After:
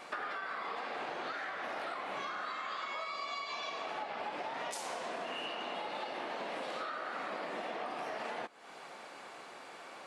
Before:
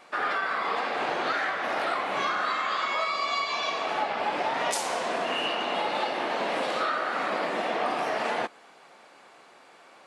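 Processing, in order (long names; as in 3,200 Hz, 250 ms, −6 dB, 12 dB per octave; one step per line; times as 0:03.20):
downward compressor 6 to 1, threshold −42 dBFS, peak gain reduction 17 dB
level +3.5 dB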